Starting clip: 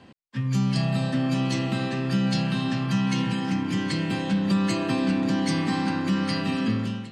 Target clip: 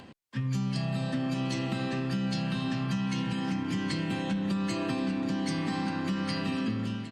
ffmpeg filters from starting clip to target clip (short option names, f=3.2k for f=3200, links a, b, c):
-filter_complex "[0:a]acompressor=mode=upward:threshold=-43dB:ratio=2.5,asplit=2[a][b];[b]adelay=699.7,volume=-19dB,highshelf=f=4k:g=-15.7[c];[a][c]amix=inputs=2:normalize=0,acompressor=threshold=-25dB:ratio=6,asettb=1/sr,asplit=3[d][e][f];[d]atrim=end=4.084[g];[e]atrim=start=4.08:end=4.51,asetpts=PTS-STARTPTS,afade=t=in:d=0.004:c=qsin,afade=t=out:st=0.426:d=0.004:c=qsin,bandreject=f=4.8k:w=7.6[h];[f]atrim=start=4.506[i];[g][h]acrossfade=d=0.004:c1=hsin:c2=qsin[j];[j][i]acrossfade=d=0.004:c1=qsin:c2=hsin,volume=-2dB" -ar 48000 -c:a libopus -b:a 64k